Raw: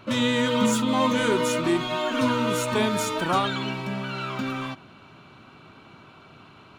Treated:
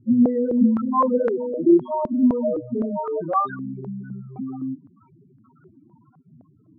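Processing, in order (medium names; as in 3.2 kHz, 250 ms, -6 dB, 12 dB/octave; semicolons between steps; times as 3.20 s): loudest bins only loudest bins 4; step-sequenced low-pass 3.9 Hz 230–1500 Hz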